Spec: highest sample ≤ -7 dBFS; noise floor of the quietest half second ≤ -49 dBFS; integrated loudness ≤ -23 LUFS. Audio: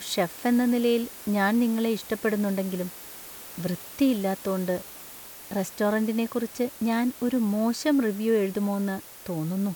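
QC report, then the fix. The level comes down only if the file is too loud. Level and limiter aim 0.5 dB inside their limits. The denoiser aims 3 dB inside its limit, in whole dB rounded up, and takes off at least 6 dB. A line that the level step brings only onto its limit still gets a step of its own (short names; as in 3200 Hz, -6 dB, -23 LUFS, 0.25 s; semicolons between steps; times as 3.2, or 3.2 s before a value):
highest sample -11.5 dBFS: OK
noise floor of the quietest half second -44 dBFS: fail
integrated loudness -26.5 LUFS: OK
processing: denoiser 8 dB, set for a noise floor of -44 dBFS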